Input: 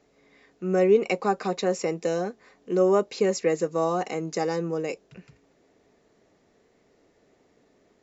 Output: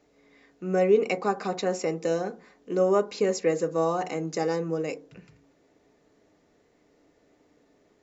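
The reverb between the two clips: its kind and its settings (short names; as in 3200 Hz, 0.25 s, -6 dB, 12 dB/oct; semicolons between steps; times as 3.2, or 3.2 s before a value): FDN reverb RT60 0.4 s, low-frequency decay 1.4×, high-frequency decay 0.25×, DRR 10.5 dB; gain -1.5 dB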